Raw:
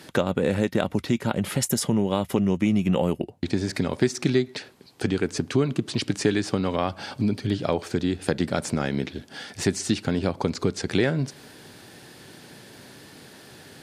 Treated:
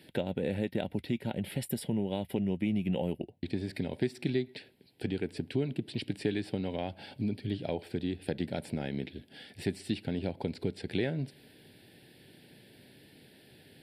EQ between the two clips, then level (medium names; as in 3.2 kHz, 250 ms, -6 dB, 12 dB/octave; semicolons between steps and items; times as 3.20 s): dynamic bell 870 Hz, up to +5 dB, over -39 dBFS, Q 1.5; static phaser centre 2.8 kHz, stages 4; -8.5 dB